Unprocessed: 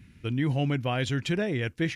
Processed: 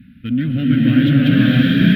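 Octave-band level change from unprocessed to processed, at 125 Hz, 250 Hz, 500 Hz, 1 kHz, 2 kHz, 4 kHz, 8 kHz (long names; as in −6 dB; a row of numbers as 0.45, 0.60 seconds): +12.5 dB, +17.5 dB, +1.0 dB, +1.0 dB, +10.5 dB, +11.0 dB, can't be measured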